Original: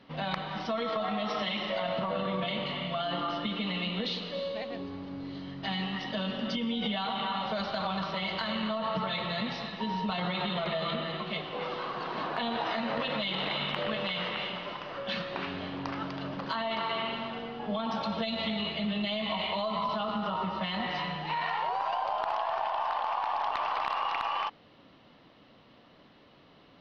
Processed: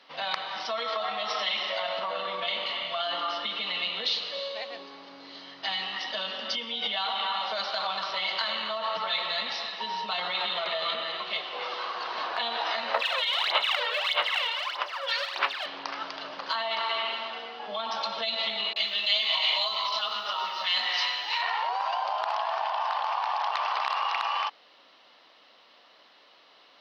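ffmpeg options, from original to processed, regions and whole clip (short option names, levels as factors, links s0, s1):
-filter_complex "[0:a]asettb=1/sr,asplit=3[s0][s1][s2];[s0]atrim=end=12.944[s3];[s1]atrim=start=12.94:end=15.66,asetpts=PTS-STARTPTS,afade=t=in:d=0.004:c=qsin,afade=t=out:st=2.716:d=0.004:c=qsin,highpass=620,acrossover=split=3100[s4][s5];[s5]acompressor=threshold=0.00794:ratio=4:attack=1:release=60[s6];[s4][s6]amix=inputs=2:normalize=0,aphaser=in_gain=1:out_gain=1:delay=2.2:decay=0.78:speed=1.6:type=sinusoidal[s7];[s2]atrim=start=15.656[s8];[s3][s7]acrossfade=d=0.004:c1=hsin:c2=qsin[s9];[s9][s8]acrossfade=d=0.004:c1=qsin:c2=hsin,asettb=1/sr,asplit=3[s10][s11][s12];[s10]atrim=end=18.734[s13];[s11]atrim=start=18.73:end=21.42,asetpts=PTS-STARTPTS,afade=t=in:d=0.004:c=qsin,afade=t=out:st=2.686:d=0.004:c=qsin,highpass=160,aemphasis=mode=production:type=riaa,acrossover=split=770[s14][s15];[s15]adelay=30[s16];[s14][s16]amix=inputs=2:normalize=0,atrim=end_sample=118629[s17];[s12]atrim=start=21.416[s18];[s13][s17]acrossfade=d=0.004:c1=hsin:c2=qsin[s19];[s19][s18]acrossfade=d=0.004:c1=qsin:c2=hsin,highpass=670,equalizer=f=5100:t=o:w=1.1:g=7,volume=1.41"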